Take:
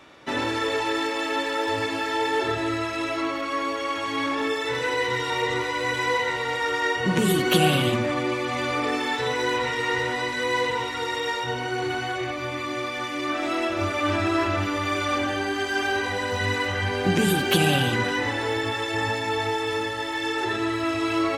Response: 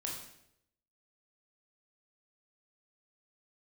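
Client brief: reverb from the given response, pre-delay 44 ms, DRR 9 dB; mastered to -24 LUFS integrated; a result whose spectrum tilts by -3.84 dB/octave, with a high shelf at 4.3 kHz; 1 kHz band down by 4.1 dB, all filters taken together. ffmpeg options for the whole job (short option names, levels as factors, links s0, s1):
-filter_complex "[0:a]equalizer=f=1000:t=o:g=-5.5,highshelf=f=4300:g=5,asplit=2[s0][s1];[1:a]atrim=start_sample=2205,adelay=44[s2];[s1][s2]afir=irnorm=-1:irlink=0,volume=0.335[s3];[s0][s3]amix=inputs=2:normalize=0,volume=1.06"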